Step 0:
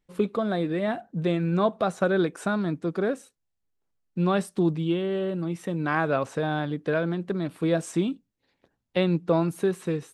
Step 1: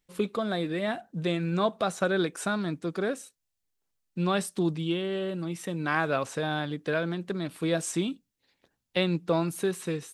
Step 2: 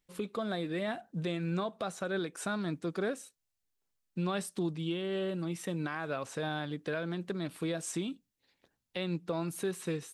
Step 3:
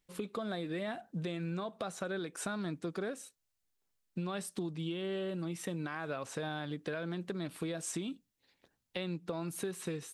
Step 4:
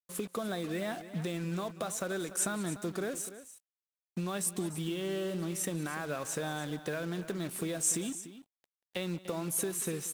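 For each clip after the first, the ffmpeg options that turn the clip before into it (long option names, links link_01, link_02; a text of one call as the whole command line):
ffmpeg -i in.wav -af "highshelf=frequency=2100:gain=10.5,volume=-4dB" out.wav
ffmpeg -i in.wav -af "alimiter=limit=-22dB:level=0:latency=1:release=274,volume=-2.5dB" out.wav
ffmpeg -i in.wav -af "acompressor=threshold=-35dB:ratio=6,volume=1dB" out.wav
ffmpeg -i in.wav -af "aexciter=amount=4.2:drive=2.6:freq=6000,acrusher=bits=7:mix=0:aa=0.5,aecho=1:1:185|294:0.106|0.2,volume=2dB" out.wav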